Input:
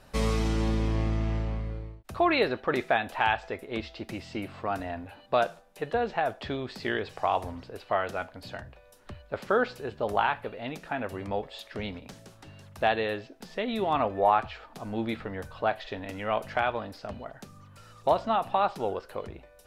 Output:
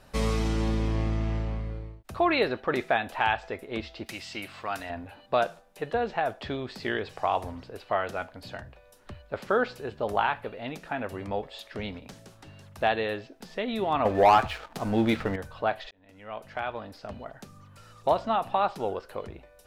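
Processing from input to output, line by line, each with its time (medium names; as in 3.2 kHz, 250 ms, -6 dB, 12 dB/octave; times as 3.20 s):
4.06–4.90 s: tilt shelf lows -8 dB, about 1.1 kHz
14.05–15.36 s: waveshaping leveller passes 2
15.91–17.27 s: fade in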